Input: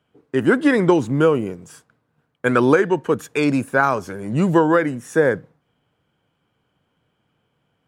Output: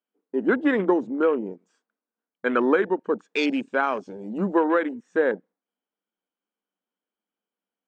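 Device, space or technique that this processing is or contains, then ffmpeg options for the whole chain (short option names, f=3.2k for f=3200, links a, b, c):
over-cleaned archive recording: -filter_complex "[0:a]asettb=1/sr,asplit=3[a][b][c];[a]atrim=end=3.344[d];[b]atrim=start=3.34:end=4.38,asetpts=PTS-STARTPTS,afade=t=in:d=0.004:c=qsin,afade=t=out:st=1.036:d=0.004:c=qsin,highshelf=f=2.3k:t=q:w=1.5:g=7[e];[c]atrim=start=4.376[f];[d][e]acrossfade=d=0.004:c1=hsin:c2=qsin[g];[g][f]acrossfade=d=0.004:c1=qsin:c2=hsin,afftfilt=real='re*between(b*sr/4096,180,9000)':imag='im*between(b*sr/4096,180,9000)':win_size=4096:overlap=0.75,highpass=160,lowpass=5.6k,afwtdn=0.0398,volume=-5dB"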